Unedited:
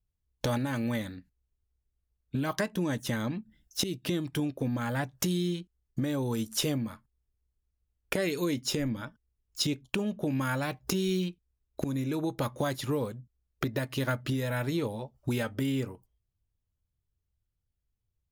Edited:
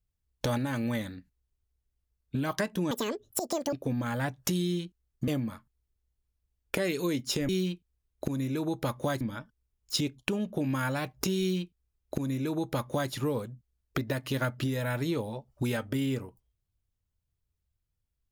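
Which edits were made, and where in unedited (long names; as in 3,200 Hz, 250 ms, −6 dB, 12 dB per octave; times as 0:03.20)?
0:02.91–0:04.48: play speed 192%
0:06.03–0:06.66: remove
0:11.05–0:12.77: duplicate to 0:08.87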